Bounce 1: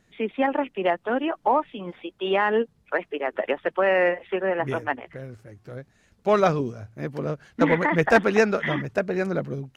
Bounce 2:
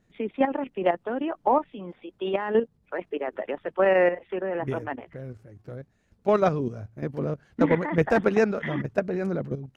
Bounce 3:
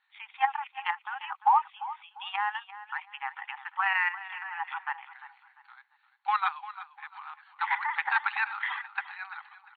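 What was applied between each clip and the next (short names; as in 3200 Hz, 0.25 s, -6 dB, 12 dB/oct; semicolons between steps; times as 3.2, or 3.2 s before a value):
level quantiser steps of 10 dB; tilt shelf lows +4 dB
brick-wall FIR band-pass 770–4500 Hz; feedback echo 0.347 s, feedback 31%, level -15 dB; gain +3 dB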